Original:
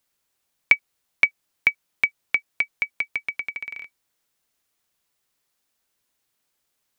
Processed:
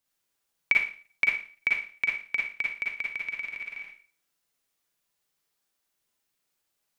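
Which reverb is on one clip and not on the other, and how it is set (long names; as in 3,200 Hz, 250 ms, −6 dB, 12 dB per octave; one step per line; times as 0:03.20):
four-comb reverb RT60 0.41 s, DRR −2.5 dB
level −8 dB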